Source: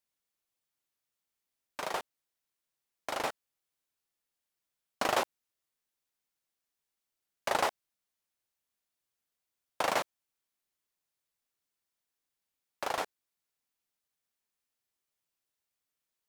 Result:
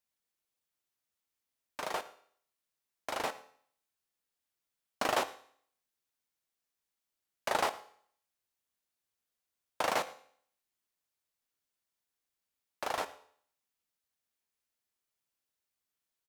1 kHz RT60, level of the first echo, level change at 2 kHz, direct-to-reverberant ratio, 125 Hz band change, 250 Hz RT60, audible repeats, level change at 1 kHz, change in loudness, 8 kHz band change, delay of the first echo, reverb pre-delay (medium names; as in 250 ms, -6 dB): 0.55 s, -22.5 dB, -1.0 dB, 11.5 dB, -1.5 dB, 0.60 s, 1, -1.0 dB, -1.0 dB, -1.0 dB, 113 ms, 5 ms